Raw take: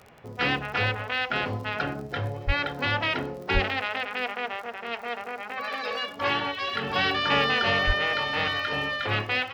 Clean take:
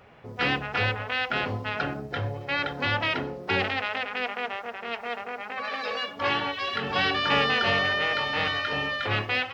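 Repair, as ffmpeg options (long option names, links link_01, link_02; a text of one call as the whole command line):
ffmpeg -i in.wav -filter_complex "[0:a]adeclick=threshold=4,asplit=3[link_01][link_02][link_03];[link_01]afade=type=out:start_time=2.46:duration=0.02[link_04];[link_02]highpass=frequency=140:width=0.5412,highpass=frequency=140:width=1.3066,afade=type=in:start_time=2.46:duration=0.02,afade=type=out:start_time=2.58:duration=0.02[link_05];[link_03]afade=type=in:start_time=2.58:duration=0.02[link_06];[link_04][link_05][link_06]amix=inputs=3:normalize=0,asplit=3[link_07][link_08][link_09];[link_07]afade=type=out:start_time=3.53:duration=0.02[link_10];[link_08]highpass=frequency=140:width=0.5412,highpass=frequency=140:width=1.3066,afade=type=in:start_time=3.53:duration=0.02,afade=type=out:start_time=3.65:duration=0.02[link_11];[link_09]afade=type=in:start_time=3.65:duration=0.02[link_12];[link_10][link_11][link_12]amix=inputs=3:normalize=0,asplit=3[link_13][link_14][link_15];[link_13]afade=type=out:start_time=7.86:duration=0.02[link_16];[link_14]highpass=frequency=140:width=0.5412,highpass=frequency=140:width=1.3066,afade=type=in:start_time=7.86:duration=0.02,afade=type=out:start_time=7.98:duration=0.02[link_17];[link_15]afade=type=in:start_time=7.98:duration=0.02[link_18];[link_16][link_17][link_18]amix=inputs=3:normalize=0" out.wav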